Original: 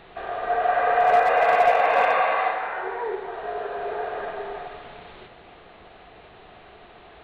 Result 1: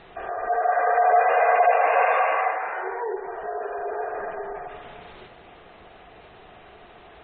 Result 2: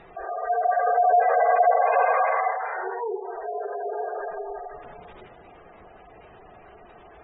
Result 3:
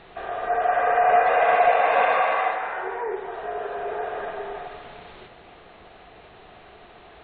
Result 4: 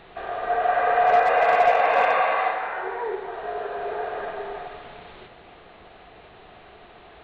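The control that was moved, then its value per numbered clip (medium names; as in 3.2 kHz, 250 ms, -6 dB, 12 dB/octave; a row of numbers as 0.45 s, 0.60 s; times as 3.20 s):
spectral gate, under each frame's peak: -25 dB, -15 dB, -40 dB, -60 dB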